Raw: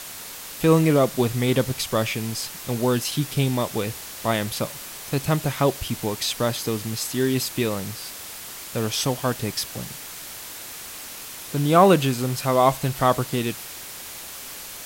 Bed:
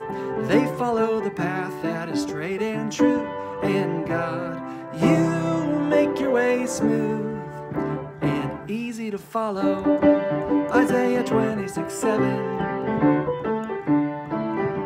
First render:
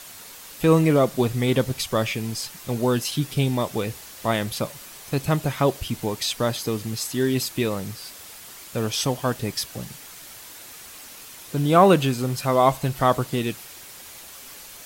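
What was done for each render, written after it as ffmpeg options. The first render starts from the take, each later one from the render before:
ffmpeg -i in.wav -af "afftdn=noise_reduction=6:noise_floor=-38" out.wav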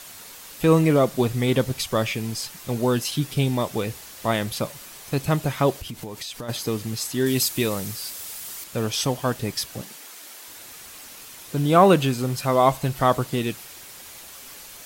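ffmpeg -i in.wav -filter_complex "[0:a]asplit=3[link_01][link_02][link_03];[link_01]afade=type=out:start_time=5.77:duration=0.02[link_04];[link_02]acompressor=threshold=-30dB:ratio=10:attack=3.2:release=140:knee=1:detection=peak,afade=type=in:start_time=5.77:duration=0.02,afade=type=out:start_time=6.48:duration=0.02[link_05];[link_03]afade=type=in:start_time=6.48:duration=0.02[link_06];[link_04][link_05][link_06]amix=inputs=3:normalize=0,asettb=1/sr,asplit=3[link_07][link_08][link_09];[link_07]atrim=end=7.264[link_10];[link_08]atrim=start=7.26:end=8.64,asetpts=PTS-STARTPTS,afade=type=in:duration=0.004:curve=qsin,afade=type=out:start_time=1.376:duration=0.004:curve=qsin,highshelf=frequency=4600:gain=8.5[link_11];[link_09]atrim=start=8.636[link_12];[link_10][link_11]acrossfade=duration=0.004:curve1=hsin:curve2=qsin[link_13];[link_13][link_12]acrossfade=duration=0.004:curve1=qsin:curve2=hsin,asettb=1/sr,asplit=3[link_14][link_15][link_16];[link_14]atrim=end=9.814[link_17];[link_15]atrim=start=9.81:end=10.48,asetpts=PTS-STARTPTS,afade=type=in:duration=0.004:curve=qsin,afade=type=out:start_time=0.666:duration=0.004:curve=qsin,highpass=frequency=240:width=0.5412,highpass=frequency=240:width=1.3066[link_18];[link_16]atrim=start=10.476[link_19];[link_17][link_18]acrossfade=duration=0.004:curve1=hsin:curve2=qsin[link_20];[link_20][link_19]acrossfade=duration=0.004:curve1=qsin:curve2=hsin" out.wav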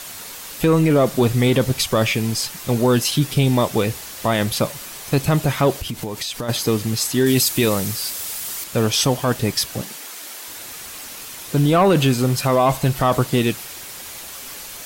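ffmpeg -i in.wav -af "acontrast=89,alimiter=limit=-8.5dB:level=0:latency=1:release=14" out.wav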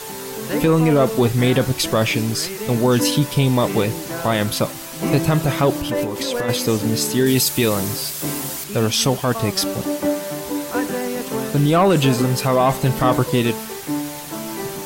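ffmpeg -i in.wav -i bed.wav -filter_complex "[1:a]volume=-4dB[link_01];[0:a][link_01]amix=inputs=2:normalize=0" out.wav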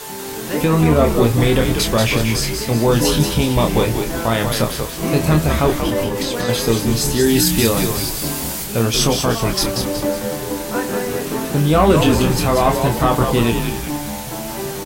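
ffmpeg -i in.wav -filter_complex "[0:a]asplit=2[link_01][link_02];[link_02]adelay=26,volume=-5.5dB[link_03];[link_01][link_03]amix=inputs=2:normalize=0,asplit=6[link_04][link_05][link_06][link_07][link_08][link_09];[link_05]adelay=186,afreqshift=-85,volume=-5.5dB[link_10];[link_06]adelay=372,afreqshift=-170,volume=-12.4dB[link_11];[link_07]adelay=558,afreqshift=-255,volume=-19.4dB[link_12];[link_08]adelay=744,afreqshift=-340,volume=-26.3dB[link_13];[link_09]adelay=930,afreqshift=-425,volume=-33.2dB[link_14];[link_04][link_10][link_11][link_12][link_13][link_14]amix=inputs=6:normalize=0" out.wav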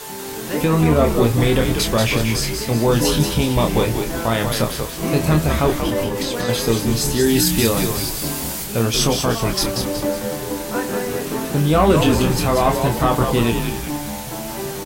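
ffmpeg -i in.wav -af "volume=-1.5dB" out.wav

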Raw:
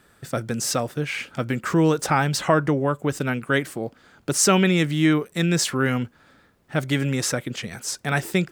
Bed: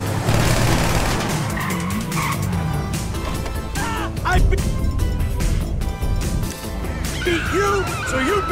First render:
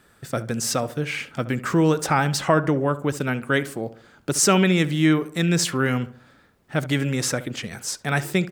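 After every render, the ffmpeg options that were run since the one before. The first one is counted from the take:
ffmpeg -i in.wav -filter_complex "[0:a]asplit=2[link_01][link_02];[link_02]adelay=70,lowpass=frequency=1700:poles=1,volume=-15dB,asplit=2[link_03][link_04];[link_04]adelay=70,lowpass=frequency=1700:poles=1,volume=0.45,asplit=2[link_05][link_06];[link_06]adelay=70,lowpass=frequency=1700:poles=1,volume=0.45,asplit=2[link_07][link_08];[link_08]adelay=70,lowpass=frequency=1700:poles=1,volume=0.45[link_09];[link_01][link_03][link_05][link_07][link_09]amix=inputs=5:normalize=0" out.wav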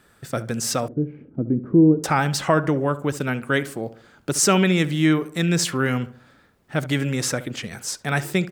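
ffmpeg -i in.wav -filter_complex "[0:a]asettb=1/sr,asplit=3[link_01][link_02][link_03];[link_01]atrim=end=0.884[link_04];[link_02]atrim=start=0.88:end=2.04,asetpts=PTS-STARTPTS,afade=type=in:duration=0.004:curve=qsin,afade=type=out:start_time=1.156:duration=0.004:curve=qsin,lowpass=frequency=320:width_type=q:width=2.2[link_05];[link_03]atrim=start=2.036[link_06];[link_04][link_05]acrossfade=duration=0.004:curve1=hsin:curve2=qsin[link_07];[link_07][link_06]acrossfade=duration=0.004:curve1=qsin:curve2=hsin" out.wav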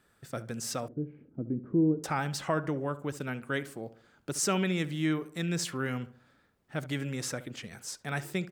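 ffmpeg -i in.wav -af "volume=-11dB" out.wav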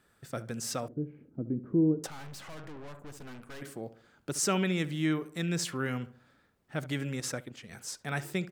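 ffmpeg -i in.wav -filter_complex "[0:a]asettb=1/sr,asplit=3[link_01][link_02][link_03];[link_01]atrim=end=2.074[link_04];[link_02]atrim=start=2.07:end=3.62,asetpts=PTS-STARTPTS,afade=type=in:duration=0.004:curve=qsin,afade=type=out:start_time=1.546:duration=0.004:curve=qsin,aeval=exprs='(tanh(158*val(0)+0.75)-tanh(0.75))/158':channel_layout=same[link_05];[link_03]atrim=start=3.616[link_06];[link_04][link_05]acrossfade=duration=0.004:curve1=hsin:curve2=qsin[link_07];[link_07][link_06]acrossfade=duration=0.004:curve1=qsin:curve2=hsin,asettb=1/sr,asplit=3[link_08][link_09][link_10];[link_08]atrim=end=7.204[link_11];[link_09]atrim=start=7.2:end=7.69,asetpts=PTS-STARTPTS,afade=type=in:duration=0.004:curve=qsin,afade=type=out:start_time=0.486:duration=0.004:curve=qsin,agate=range=-6dB:threshold=-40dB:ratio=16:release=100:detection=peak[link_12];[link_10]atrim=start=7.686[link_13];[link_11][link_12]acrossfade=duration=0.004:curve1=hsin:curve2=qsin[link_14];[link_14][link_13]acrossfade=duration=0.004:curve1=qsin:curve2=hsin" out.wav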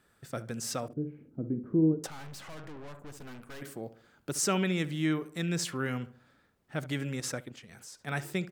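ffmpeg -i in.wav -filter_complex "[0:a]asettb=1/sr,asplit=3[link_01][link_02][link_03];[link_01]atrim=end=0.854[link_04];[link_02]atrim=start=0.85:end=1.93,asetpts=PTS-STARTPTS,afade=type=in:duration=0.004:curve=qsin,afade=type=out:start_time=1.076:duration=0.004:curve=qsin,asplit=2[link_05][link_06];[link_06]adelay=50,volume=-11dB[link_07];[link_05][link_07]amix=inputs=2:normalize=0,atrim=end_sample=47628[link_08];[link_03]atrim=start=1.926[link_09];[link_04][link_08]acrossfade=duration=0.004:curve1=hsin:curve2=qsin[link_10];[link_10][link_09]acrossfade=duration=0.004:curve1=qsin:curve2=hsin,asettb=1/sr,asplit=3[link_11][link_12][link_13];[link_11]atrim=end=3.204[link_14];[link_12]atrim=start=3.2:end=4.41,asetpts=PTS-STARTPTS,afade=type=in:duration=0.004:curve=qsin,afade=type=out:start_time=1.206:duration=0.004:curve=qsin,equalizer=frequency=16000:width=1.2:gain=7[link_15];[link_13]atrim=start=4.406[link_16];[link_14][link_15]acrossfade=duration=0.004:curve1=hsin:curve2=qsin[link_17];[link_17][link_16]acrossfade=duration=0.004:curve1=qsin:curve2=hsin,asplit=3[link_18][link_19][link_20];[link_18]afade=type=out:start_time=7.58:duration=0.02[link_21];[link_19]acompressor=threshold=-48dB:ratio=2.5:attack=3.2:release=140:knee=1:detection=peak,afade=type=in:start_time=7.58:duration=0.02,afade=type=out:start_time=8.06:duration=0.02[link_22];[link_20]afade=type=in:start_time=8.06:duration=0.02[link_23];[link_21][link_22][link_23]amix=inputs=3:normalize=0" out.wav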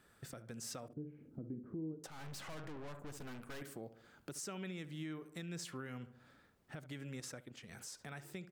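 ffmpeg -i in.wav -af "acompressor=threshold=-46dB:ratio=2,alimiter=level_in=11dB:limit=-24dB:level=0:latency=1:release=437,volume=-11dB" out.wav

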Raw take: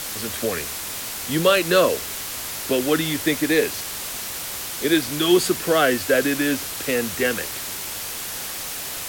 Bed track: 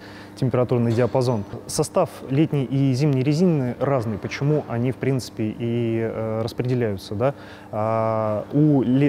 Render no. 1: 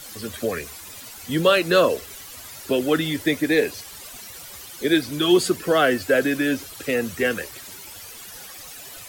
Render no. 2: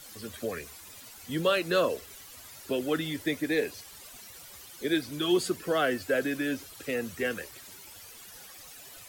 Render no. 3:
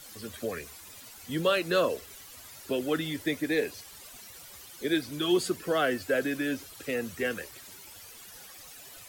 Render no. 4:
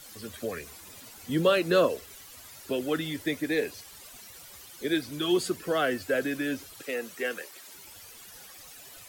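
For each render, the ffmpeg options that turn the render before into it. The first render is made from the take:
ffmpeg -i in.wav -af "afftdn=noise_reduction=13:noise_floor=-31" out.wav
ffmpeg -i in.wav -af "volume=-8.5dB" out.wav
ffmpeg -i in.wav -af anull out.wav
ffmpeg -i in.wav -filter_complex "[0:a]asettb=1/sr,asplit=3[link_01][link_02][link_03];[link_01]atrim=end=0.674[link_04];[link_02]atrim=start=0.67:end=1.87,asetpts=PTS-STARTPTS,afade=type=in:duration=0.004:curve=qsin,afade=type=out:start_time=1.196:duration=0.004:curve=qsin,equalizer=frequency=260:width=0.41:gain=5[link_05];[link_03]atrim=start=1.866[link_06];[link_04][link_05]acrossfade=duration=0.004:curve1=hsin:curve2=qsin[link_07];[link_07][link_06]acrossfade=duration=0.004:curve1=qsin:curve2=hsin,asettb=1/sr,asplit=3[link_08][link_09][link_10];[link_08]atrim=end=6.824[link_11];[link_09]atrim=start=6.82:end=7.75,asetpts=PTS-STARTPTS,afade=type=in:duration=0.004:curve=qsin,afade=type=out:start_time=0.926:duration=0.004:curve=qsin,highpass=330[link_12];[link_10]atrim=start=7.746[link_13];[link_11][link_12]acrossfade=duration=0.004:curve1=hsin:curve2=qsin[link_14];[link_14][link_13]acrossfade=duration=0.004:curve1=qsin:curve2=hsin" out.wav

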